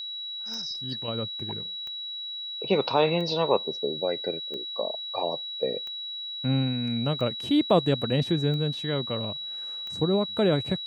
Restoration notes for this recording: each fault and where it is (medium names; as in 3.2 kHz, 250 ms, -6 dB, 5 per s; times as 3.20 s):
tick 45 rpm -26 dBFS
whine 3.9 kHz -33 dBFS